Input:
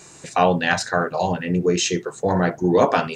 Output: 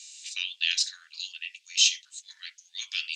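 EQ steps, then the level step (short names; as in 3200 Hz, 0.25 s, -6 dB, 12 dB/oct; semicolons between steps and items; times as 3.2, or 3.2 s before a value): steep high-pass 2900 Hz 36 dB/oct; air absorption 100 m; +8.0 dB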